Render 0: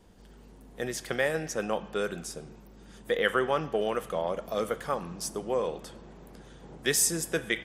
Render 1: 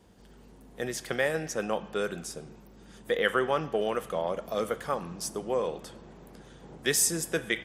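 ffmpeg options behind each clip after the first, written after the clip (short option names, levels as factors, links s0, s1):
-af "highpass=50"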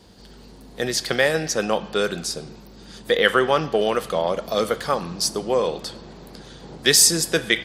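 -af "equalizer=f=4400:t=o:w=0.61:g=12.5,volume=2.51"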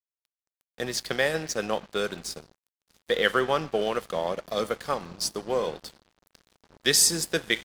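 -af "aeval=exprs='sgn(val(0))*max(abs(val(0))-0.0178,0)':c=same,volume=0.562"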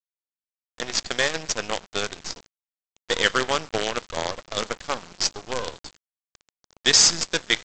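-af "highshelf=f=2000:g=8.5,aresample=16000,acrusher=bits=4:dc=4:mix=0:aa=0.000001,aresample=44100,volume=0.891"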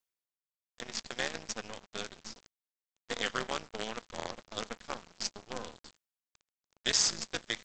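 -af "areverse,acompressor=mode=upward:threshold=0.00794:ratio=2.5,areverse,tremolo=f=220:d=0.919,volume=0.398"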